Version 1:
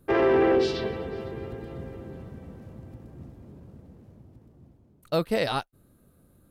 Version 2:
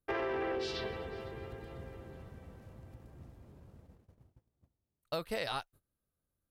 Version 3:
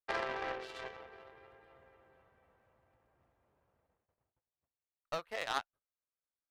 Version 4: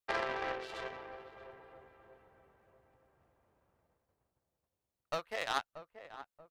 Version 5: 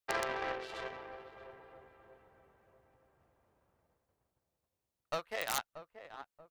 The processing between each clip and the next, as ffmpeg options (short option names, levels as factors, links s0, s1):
-af "agate=range=0.1:threshold=0.00355:ratio=16:detection=peak,equalizer=f=230:t=o:w=2.4:g=-9.5,acompressor=threshold=0.0355:ratio=6,volume=0.708"
-filter_complex "[0:a]volume=28.2,asoftclip=hard,volume=0.0355,acrossover=split=540 2800:gain=0.126 1 0.158[s0][s1][s2];[s0][s1][s2]amix=inputs=3:normalize=0,aeval=exprs='0.0398*(cos(1*acos(clip(val(0)/0.0398,-1,1)))-cos(1*PI/2))+0.0126*(cos(3*acos(clip(val(0)/0.0398,-1,1)))-cos(3*PI/2))+0.00316*(cos(5*acos(clip(val(0)/0.0398,-1,1)))-cos(5*PI/2))+0.00178*(cos(7*acos(clip(val(0)/0.0398,-1,1)))-cos(7*PI/2))':c=same,volume=2.99"
-filter_complex "[0:a]asplit=2[s0][s1];[s1]adelay=632,lowpass=f=1100:p=1,volume=0.282,asplit=2[s2][s3];[s3]adelay=632,lowpass=f=1100:p=1,volume=0.42,asplit=2[s4][s5];[s5]adelay=632,lowpass=f=1100:p=1,volume=0.42,asplit=2[s6][s7];[s7]adelay=632,lowpass=f=1100:p=1,volume=0.42[s8];[s0][s2][s4][s6][s8]amix=inputs=5:normalize=0,volume=1.19"
-af "aeval=exprs='(mod(10*val(0)+1,2)-1)/10':c=same"